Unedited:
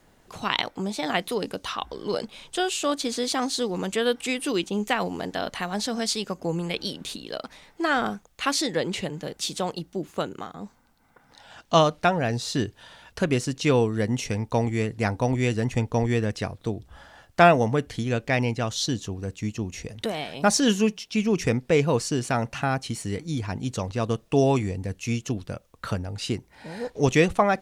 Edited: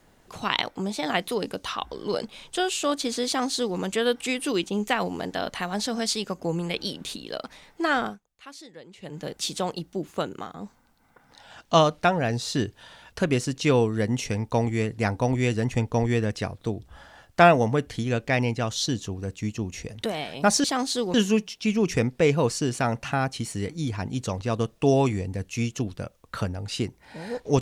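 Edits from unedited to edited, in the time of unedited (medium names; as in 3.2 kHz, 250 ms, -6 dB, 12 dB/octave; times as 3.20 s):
3.27–3.77 s: copy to 20.64 s
7.89–9.31 s: dip -19.5 dB, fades 0.31 s equal-power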